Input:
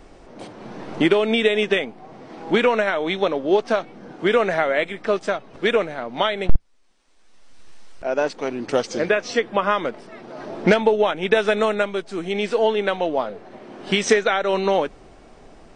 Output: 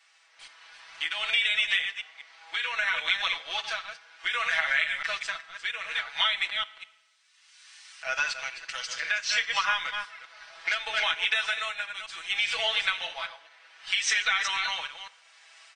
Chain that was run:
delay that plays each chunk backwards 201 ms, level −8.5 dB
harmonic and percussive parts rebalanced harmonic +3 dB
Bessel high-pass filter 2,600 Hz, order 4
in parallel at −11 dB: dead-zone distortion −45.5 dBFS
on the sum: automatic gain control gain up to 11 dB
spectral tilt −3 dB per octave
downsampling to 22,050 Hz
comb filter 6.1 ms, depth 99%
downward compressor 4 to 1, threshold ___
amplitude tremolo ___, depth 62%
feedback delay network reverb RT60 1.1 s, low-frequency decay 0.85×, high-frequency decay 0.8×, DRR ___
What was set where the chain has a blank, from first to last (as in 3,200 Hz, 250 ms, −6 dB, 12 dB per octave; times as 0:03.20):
−22 dBFS, 0.63 Hz, 14 dB